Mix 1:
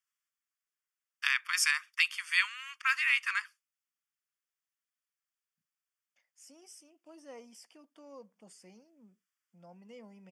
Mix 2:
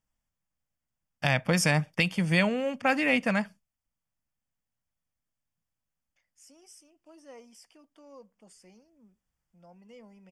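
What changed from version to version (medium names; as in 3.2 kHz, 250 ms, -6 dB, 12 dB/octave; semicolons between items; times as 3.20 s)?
first voice: remove steep high-pass 1.1 kHz 72 dB/octave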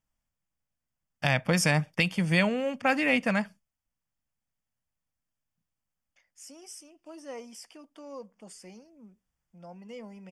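second voice +8.0 dB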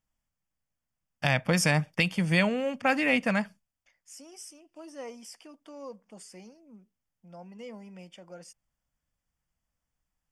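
second voice: entry -2.30 s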